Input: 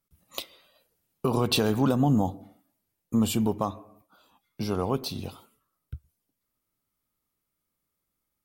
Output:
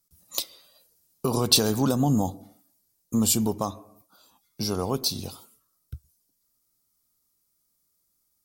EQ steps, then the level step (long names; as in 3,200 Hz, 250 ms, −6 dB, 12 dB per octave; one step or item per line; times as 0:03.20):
high shelf with overshoot 3,800 Hz +10 dB, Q 1.5
0.0 dB